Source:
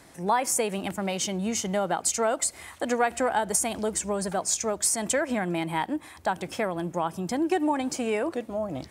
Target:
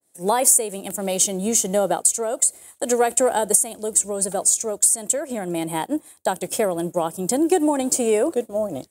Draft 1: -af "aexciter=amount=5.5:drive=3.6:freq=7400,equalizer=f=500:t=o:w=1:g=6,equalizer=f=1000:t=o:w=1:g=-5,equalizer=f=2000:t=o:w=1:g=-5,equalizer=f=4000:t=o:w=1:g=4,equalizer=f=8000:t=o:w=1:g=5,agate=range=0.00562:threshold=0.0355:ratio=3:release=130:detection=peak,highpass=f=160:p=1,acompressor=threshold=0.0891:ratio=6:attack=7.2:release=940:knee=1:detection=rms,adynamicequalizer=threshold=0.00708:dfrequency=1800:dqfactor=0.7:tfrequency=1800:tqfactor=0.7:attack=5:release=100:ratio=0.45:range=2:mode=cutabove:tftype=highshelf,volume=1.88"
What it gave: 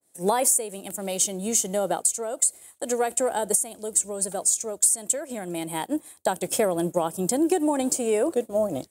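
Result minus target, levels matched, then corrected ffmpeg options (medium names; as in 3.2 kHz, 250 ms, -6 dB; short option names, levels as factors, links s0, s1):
compression: peak gain reduction +6 dB
-af "aexciter=amount=5.5:drive=3.6:freq=7400,equalizer=f=500:t=o:w=1:g=6,equalizer=f=1000:t=o:w=1:g=-5,equalizer=f=2000:t=o:w=1:g=-5,equalizer=f=4000:t=o:w=1:g=4,equalizer=f=8000:t=o:w=1:g=5,agate=range=0.00562:threshold=0.0355:ratio=3:release=130:detection=peak,highpass=f=160:p=1,acompressor=threshold=0.2:ratio=6:attack=7.2:release=940:knee=1:detection=rms,adynamicequalizer=threshold=0.00708:dfrequency=1800:dqfactor=0.7:tfrequency=1800:tqfactor=0.7:attack=5:release=100:ratio=0.45:range=2:mode=cutabove:tftype=highshelf,volume=1.88"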